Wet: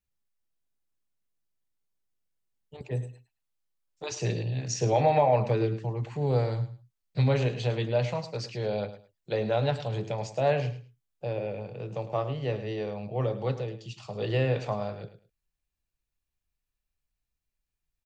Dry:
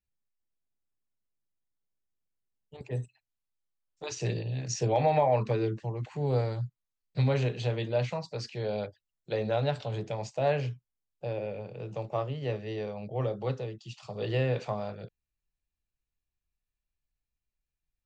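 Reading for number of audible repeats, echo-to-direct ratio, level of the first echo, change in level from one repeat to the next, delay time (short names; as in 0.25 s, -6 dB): 2, -13.0 dB, -13.0 dB, -14.0 dB, 0.106 s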